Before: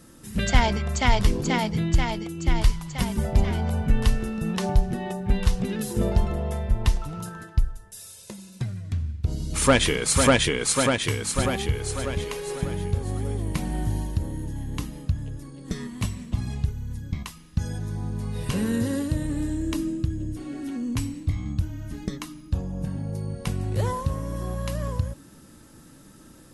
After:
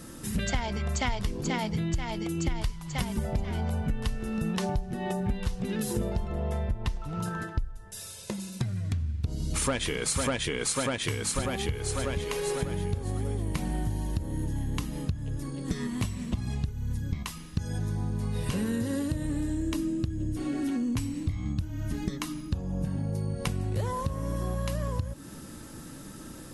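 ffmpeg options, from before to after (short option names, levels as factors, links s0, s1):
-filter_complex "[0:a]asettb=1/sr,asplit=3[s0][s1][s2];[s0]atrim=end=6.274[s3];[s1]atrim=start=6.27:end=8.4,asetpts=PTS-STARTPTS,afade=t=in:d=0.004:c=qsin,afade=t=out:st=2.126:d=0.004:c=qsin,highshelf=f=6100:g=-8[s4];[s2]atrim=start=8.396[s5];[s3][s4]acrossfade=d=0.004:c1=hsin:c2=qsin[s6];[s6][s5]acrossfade=d=0.004:c1=qsin:c2=hsin,acompressor=threshold=0.0224:ratio=6,volume=2"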